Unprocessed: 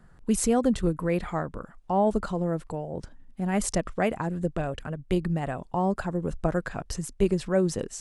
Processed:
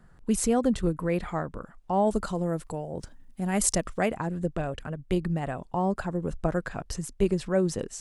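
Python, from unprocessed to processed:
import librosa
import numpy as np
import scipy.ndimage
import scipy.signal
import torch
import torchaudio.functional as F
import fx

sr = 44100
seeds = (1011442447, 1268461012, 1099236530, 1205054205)

y = fx.high_shelf(x, sr, hz=5500.0, db=11.0, at=(1.93, 4.06))
y = F.gain(torch.from_numpy(y), -1.0).numpy()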